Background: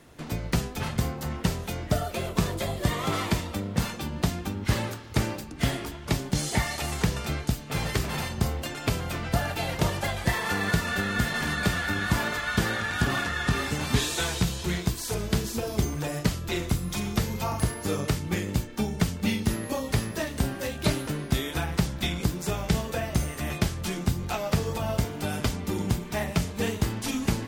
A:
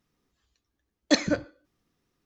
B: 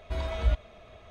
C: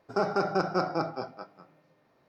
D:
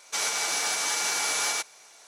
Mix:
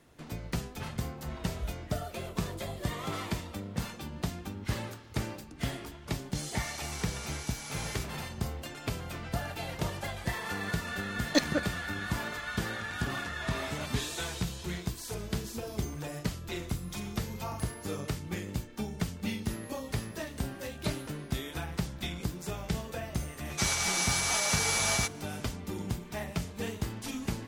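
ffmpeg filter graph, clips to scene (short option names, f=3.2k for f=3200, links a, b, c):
-filter_complex "[2:a]asplit=2[a][b];[4:a]asplit=2[c][d];[0:a]volume=-8dB[e];[c]aecho=1:1:6.2:0.65[f];[1:a]aeval=exprs='sgn(val(0))*max(abs(val(0))-0.02,0)':c=same[g];[b]highpass=590[h];[d]aecho=1:1:7.4:0.67[i];[a]atrim=end=1.1,asetpts=PTS-STARTPTS,volume=-12dB,afade=t=in:d=0.004:c=hsin,afade=t=out:st=1.096:d=0.004:c=hsin,adelay=1170[j];[f]atrim=end=2.07,asetpts=PTS-STARTPTS,volume=-17.5dB,afade=t=in:d=0.004:c=hsin,afade=t=out:st=2.066:d=0.004:c=hsin,adelay=283122S[k];[g]atrim=end=2.25,asetpts=PTS-STARTPTS,volume=-3dB,afade=t=in:d=0.004:c=hsin,afade=t=out:st=2.246:d=0.004:c=hsin,adelay=10240[l];[h]atrim=end=1.1,asetpts=PTS-STARTPTS,volume=-2.5dB,afade=t=in:d=0.004:c=hsin,afade=t=out:st=1.096:d=0.004:c=hsin,adelay=13310[m];[i]atrim=end=2.07,asetpts=PTS-STARTPTS,volume=-4dB,afade=t=in:d=0.004:c=hsin,afade=t=out:st=2.066:d=0.004:c=hsin,adelay=23450[n];[e][j][k][l][m][n]amix=inputs=6:normalize=0"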